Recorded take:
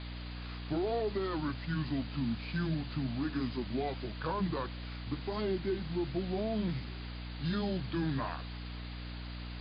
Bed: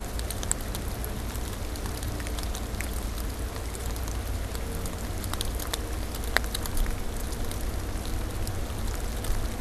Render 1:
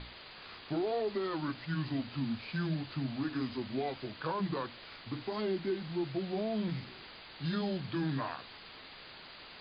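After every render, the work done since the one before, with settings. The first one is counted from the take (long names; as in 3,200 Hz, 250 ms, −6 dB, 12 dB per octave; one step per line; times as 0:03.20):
mains-hum notches 60/120/180/240/300 Hz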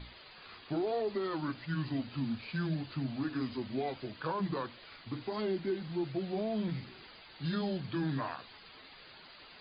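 broadband denoise 8 dB, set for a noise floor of −51 dBFS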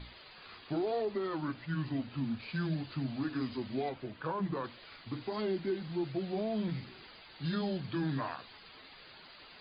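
0:01.05–0:02.40: high-frequency loss of the air 130 metres
0:03.89–0:04.64: high-frequency loss of the air 230 metres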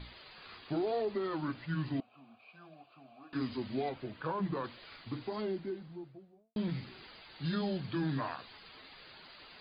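0:02.00–0:03.33: formant filter a
0:04.97–0:06.56: fade out and dull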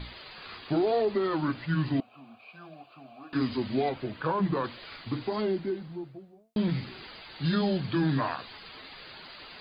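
level +7.5 dB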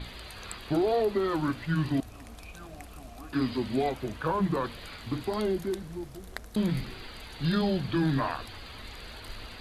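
mix in bed −15.5 dB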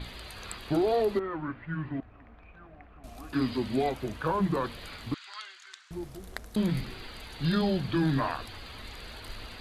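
0:01.19–0:03.04: transistor ladder low-pass 2,400 Hz, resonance 30%
0:05.14–0:05.91: Chebyshev band-pass filter 1,300–7,300 Hz, order 3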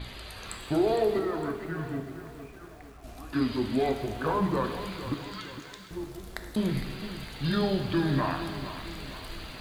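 reverb whose tail is shaped and stops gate 430 ms falling, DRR 6 dB
feedback echo at a low word length 459 ms, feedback 55%, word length 8 bits, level −11.5 dB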